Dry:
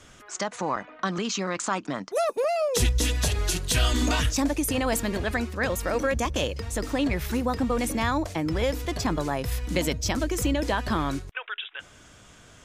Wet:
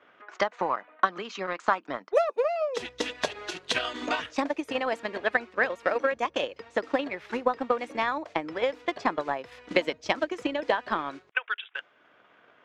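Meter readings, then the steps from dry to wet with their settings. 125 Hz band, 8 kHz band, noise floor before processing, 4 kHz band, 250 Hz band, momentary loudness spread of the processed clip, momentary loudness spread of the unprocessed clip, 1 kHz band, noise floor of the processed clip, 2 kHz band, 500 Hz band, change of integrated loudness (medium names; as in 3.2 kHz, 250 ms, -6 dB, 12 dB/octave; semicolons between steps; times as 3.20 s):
-21.5 dB, -16.5 dB, -52 dBFS, -4.5 dB, -8.0 dB, 6 LU, 7 LU, +1.5 dB, -62 dBFS, +1.5 dB, 0.0 dB, -2.5 dB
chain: level-controlled noise filter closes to 2.3 kHz, open at -24.5 dBFS; band-pass 420–2900 Hz; transient shaper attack +11 dB, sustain -4 dB; trim -3 dB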